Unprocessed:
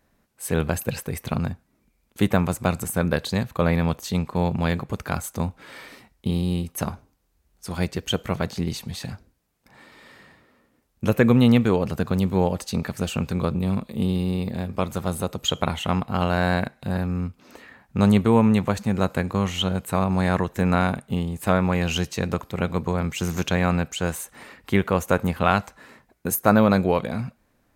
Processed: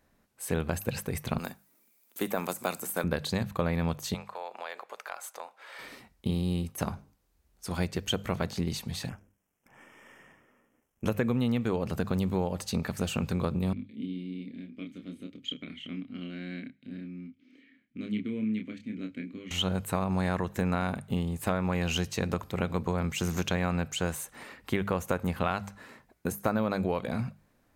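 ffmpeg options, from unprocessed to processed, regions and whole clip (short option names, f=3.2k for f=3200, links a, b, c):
-filter_complex "[0:a]asettb=1/sr,asplit=3[a][b][c];[a]atrim=end=1.384[d];[b]atrim=start=1.38:end=3.04,asetpts=PTS-STARTPTS,afade=t=in:d=0.004:c=qsin,afade=t=out:st=1.656:d=0.004:c=qsin,highpass=210,aemphasis=mode=production:type=bsi[e];[c]atrim=start=3.036[f];[d][e]acrossfade=d=0.004:c1=hsin:c2=qsin[g];[g][f]acrossfade=d=0.004:c1=qsin:c2=hsin,asettb=1/sr,asplit=3[h][i][j];[h]atrim=end=4.144[k];[i]atrim=start=4.14:end=5.79,asetpts=PTS-STARTPTS,afade=t=in:d=0.004:c=qsin,afade=t=out:st=1.646:d=0.004:c=qsin,highpass=f=550:w=0.5412,highpass=f=550:w=1.3066,highshelf=f=4.6k:g=-6.5,acompressor=threshold=-34dB:ratio=2.5:attack=3.2:release=140:knee=1:detection=peak[l];[j]atrim=start=5.786[m];[k][l]acrossfade=d=0.004:c1=hsin:c2=qsin[n];[n][m]acrossfade=d=0.004:c1=qsin:c2=hsin,asettb=1/sr,asplit=3[o][p][q];[o]atrim=end=9.094[r];[p]atrim=start=9.09:end=11.06,asetpts=PTS-STARTPTS,afade=t=in:d=0.004:c=qsin,afade=t=out:st=1.966:d=0.004:c=qsin,aeval=exprs='if(lt(val(0),0),0.447*val(0),val(0))':c=same,asuperstop=centerf=4200:order=8:qfactor=2.1,lowshelf=f=77:g=-9[s];[q]atrim=start=11.056[t];[r][s]acrossfade=d=0.004:c1=hsin:c2=qsin[u];[u][t]acrossfade=d=0.004:c1=qsin:c2=hsin,asettb=1/sr,asplit=3[v][w][x];[v]atrim=end=13.734[y];[w]atrim=start=13.73:end=19.51,asetpts=PTS-STARTPTS,afade=t=in:d=0.004:c=qsin,afade=t=out:st=5.776:d=0.004:c=qsin,asplit=3[z][aa][ab];[z]bandpass=f=270:t=q:w=8,volume=0dB[ac];[aa]bandpass=f=2.29k:t=q:w=8,volume=-6dB[ad];[ab]bandpass=f=3.01k:t=q:w=8,volume=-9dB[ae];[ac][ad][ae]amix=inputs=3:normalize=0,asplit=2[af][ag];[ag]adelay=28,volume=-5dB[ah];[af][ah]amix=inputs=2:normalize=0,atrim=end_sample=254898[ai];[x]atrim=start=19.506[aj];[y][ai]acrossfade=d=0.004:c1=hsin:c2=qsin[ak];[ak][aj]acrossfade=d=0.004:c1=qsin:c2=hsin,deesser=0.5,bandreject=f=50:t=h:w=6,bandreject=f=100:t=h:w=6,bandreject=f=150:t=h:w=6,bandreject=f=200:t=h:w=6,acompressor=threshold=-22dB:ratio=6,volume=-2.5dB"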